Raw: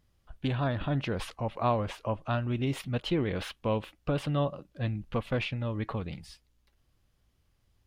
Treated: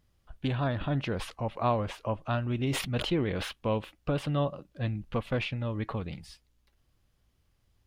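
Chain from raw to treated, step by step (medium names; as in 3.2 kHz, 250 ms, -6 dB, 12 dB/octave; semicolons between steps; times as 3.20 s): 2.59–3.53 s: decay stretcher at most 64 dB/s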